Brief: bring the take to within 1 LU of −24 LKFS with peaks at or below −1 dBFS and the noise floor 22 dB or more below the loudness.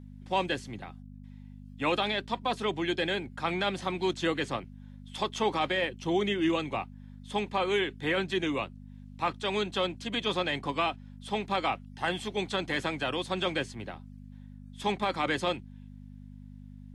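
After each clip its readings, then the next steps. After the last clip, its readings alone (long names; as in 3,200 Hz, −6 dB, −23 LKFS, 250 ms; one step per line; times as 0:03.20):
mains hum 50 Hz; hum harmonics up to 250 Hz; level of the hum −44 dBFS; integrated loudness −31.0 LKFS; sample peak −16.5 dBFS; target loudness −24.0 LKFS
→ hum removal 50 Hz, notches 5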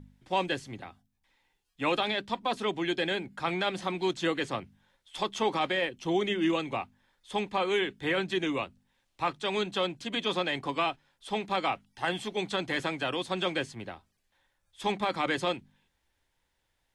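mains hum none found; integrated loudness −31.0 LKFS; sample peak −16.5 dBFS; target loudness −24.0 LKFS
→ level +7 dB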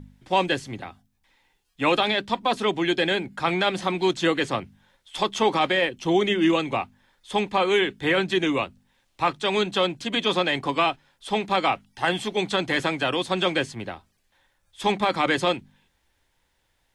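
integrated loudness −24.0 LKFS; sample peak −9.5 dBFS; background noise floor −70 dBFS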